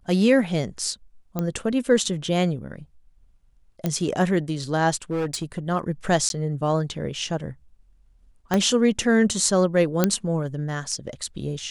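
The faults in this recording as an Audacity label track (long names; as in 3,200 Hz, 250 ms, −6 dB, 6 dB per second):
1.390000	1.390000	click −13 dBFS
3.860000	3.860000	click −11 dBFS
5.110000	5.590000	clipping −21.5 dBFS
6.290000	6.300000	drop-out 12 ms
8.540000	8.540000	click −7 dBFS
10.040000	10.040000	click −4 dBFS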